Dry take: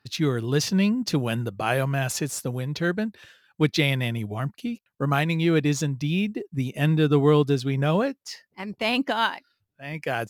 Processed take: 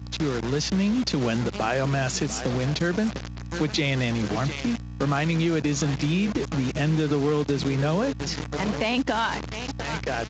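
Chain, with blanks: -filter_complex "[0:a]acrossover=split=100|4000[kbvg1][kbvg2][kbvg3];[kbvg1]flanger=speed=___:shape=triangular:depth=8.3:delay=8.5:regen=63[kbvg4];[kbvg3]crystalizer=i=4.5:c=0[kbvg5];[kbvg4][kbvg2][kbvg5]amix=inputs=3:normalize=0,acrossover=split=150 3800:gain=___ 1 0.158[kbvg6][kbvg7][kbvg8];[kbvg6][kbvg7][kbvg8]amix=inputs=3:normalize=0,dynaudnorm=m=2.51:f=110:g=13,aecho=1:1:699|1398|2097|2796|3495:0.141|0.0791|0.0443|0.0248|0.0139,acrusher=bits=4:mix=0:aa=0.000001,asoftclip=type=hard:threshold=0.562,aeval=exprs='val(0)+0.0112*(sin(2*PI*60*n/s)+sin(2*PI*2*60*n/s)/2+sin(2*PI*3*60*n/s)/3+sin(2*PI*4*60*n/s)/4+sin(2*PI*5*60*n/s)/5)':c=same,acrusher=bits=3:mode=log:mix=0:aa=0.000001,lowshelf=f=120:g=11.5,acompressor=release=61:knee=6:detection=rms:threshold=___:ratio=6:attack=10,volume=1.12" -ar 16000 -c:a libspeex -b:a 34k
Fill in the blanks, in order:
0.98, 0.0794, 0.0708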